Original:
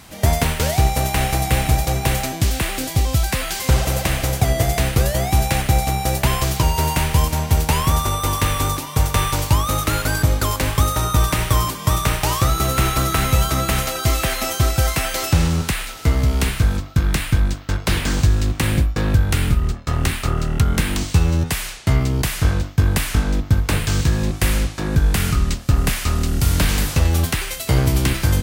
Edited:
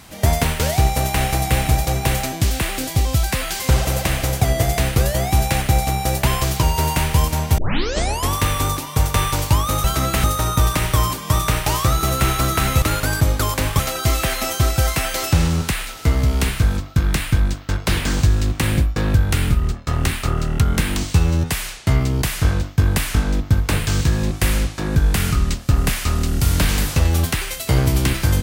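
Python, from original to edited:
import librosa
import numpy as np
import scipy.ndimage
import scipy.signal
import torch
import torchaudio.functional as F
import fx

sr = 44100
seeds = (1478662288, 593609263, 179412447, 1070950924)

y = fx.edit(x, sr, fx.tape_start(start_s=7.58, length_s=0.75),
    fx.swap(start_s=9.84, length_s=0.97, other_s=13.39, other_length_s=0.4), tone=tone)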